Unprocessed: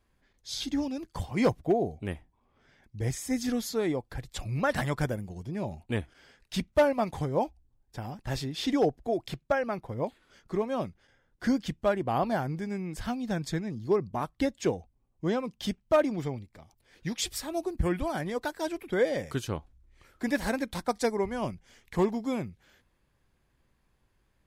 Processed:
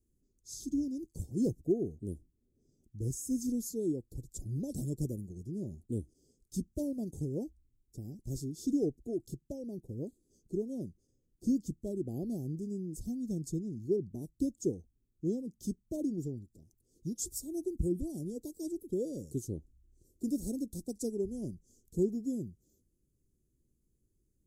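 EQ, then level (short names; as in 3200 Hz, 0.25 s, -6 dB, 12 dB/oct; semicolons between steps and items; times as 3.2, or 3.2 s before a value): elliptic band-stop 370–6700 Hz, stop band 80 dB; low shelf 190 Hz -4 dB; -1.0 dB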